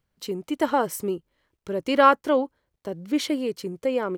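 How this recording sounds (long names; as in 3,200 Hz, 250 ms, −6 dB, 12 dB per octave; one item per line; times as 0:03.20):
background noise floor −82 dBFS
spectral slope −3.0 dB per octave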